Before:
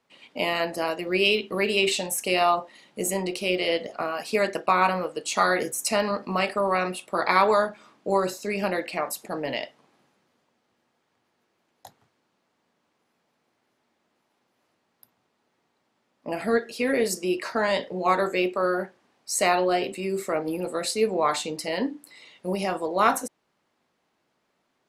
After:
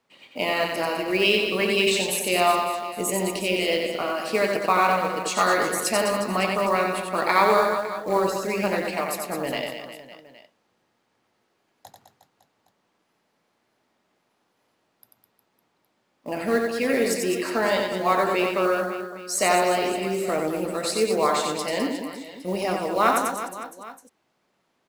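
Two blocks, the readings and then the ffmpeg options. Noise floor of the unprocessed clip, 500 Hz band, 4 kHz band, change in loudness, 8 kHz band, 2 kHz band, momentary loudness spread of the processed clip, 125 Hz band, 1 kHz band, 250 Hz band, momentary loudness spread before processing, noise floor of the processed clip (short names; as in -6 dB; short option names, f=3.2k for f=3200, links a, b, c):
-74 dBFS, +2.0 dB, +2.0 dB, +2.0 dB, +2.5 dB, +2.0 dB, 11 LU, +2.0 dB, +2.0 dB, +2.0 dB, 9 LU, -72 dBFS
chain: -af "acrusher=bits=6:mode=log:mix=0:aa=0.000001,aecho=1:1:90|207|359.1|556.8|813.9:0.631|0.398|0.251|0.158|0.1"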